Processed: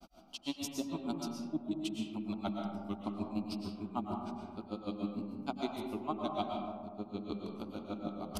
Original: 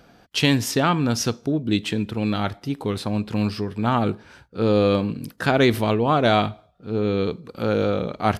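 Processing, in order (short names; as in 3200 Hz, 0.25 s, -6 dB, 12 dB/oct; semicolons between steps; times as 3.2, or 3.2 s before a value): reverse; compressor 4:1, threshold -34 dBFS, peak gain reduction 17.5 dB; reverse; grains 79 ms, grains 6.6/s, spray 16 ms, pitch spread up and down by 0 st; fixed phaser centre 470 Hz, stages 6; digital reverb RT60 1.8 s, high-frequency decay 0.3×, pre-delay 80 ms, DRR 0.5 dB; gain +3 dB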